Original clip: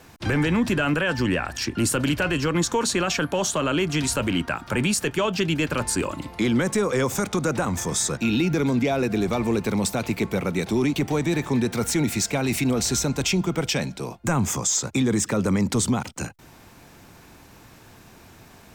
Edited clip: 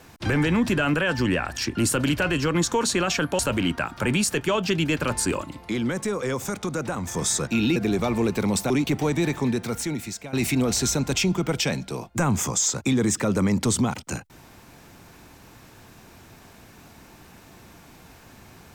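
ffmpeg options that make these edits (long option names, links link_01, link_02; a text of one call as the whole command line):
ffmpeg -i in.wav -filter_complex "[0:a]asplit=7[link_01][link_02][link_03][link_04][link_05][link_06][link_07];[link_01]atrim=end=3.392[link_08];[link_02]atrim=start=4.088:end=6.132[link_09];[link_03]atrim=start=6.128:end=7.842,asetpts=PTS-STARTPTS,volume=-4.5dB[link_10];[link_04]atrim=start=7.838:end=8.462[link_11];[link_05]atrim=start=9.048:end=9.992[link_12];[link_06]atrim=start=10.788:end=12.42,asetpts=PTS-STARTPTS,afade=type=out:start_time=0.562:duration=1.07:silence=0.16788[link_13];[link_07]atrim=start=12.42,asetpts=PTS-STARTPTS,afade=type=in:duration=0.004:curve=hsin:silence=0.16788[link_14];[link_08][link_09]acrossfade=duration=0.004:curve1=hsin:curve2=hsin[link_15];[link_15][link_10]acrossfade=duration=0.004:curve1=hsin:curve2=hsin[link_16];[link_16][link_11]acrossfade=duration=0.004:curve1=hsin:curve2=hsin[link_17];[link_17][link_12]acrossfade=duration=0.004:curve1=hsin:curve2=hsin[link_18];[link_13][link_14]concat=n=2:v=0:a=1[link_19];[link_18][link_19]acrossfade=duration=0.004:curve1=hsin:curve2=hsin" out.wav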